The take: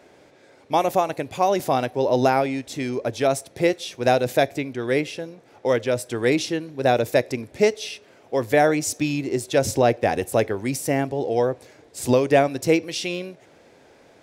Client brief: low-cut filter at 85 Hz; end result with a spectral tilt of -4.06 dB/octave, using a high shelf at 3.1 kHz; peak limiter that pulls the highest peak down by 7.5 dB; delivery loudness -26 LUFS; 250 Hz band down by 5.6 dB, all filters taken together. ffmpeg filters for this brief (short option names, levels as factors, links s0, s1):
-af "highpass=85,equalizer=f=250:t=o:g=-7.5,highshelf=f=3100:g=6,volume=0.944,alimiter=limit=0.237:level=0:latency=1"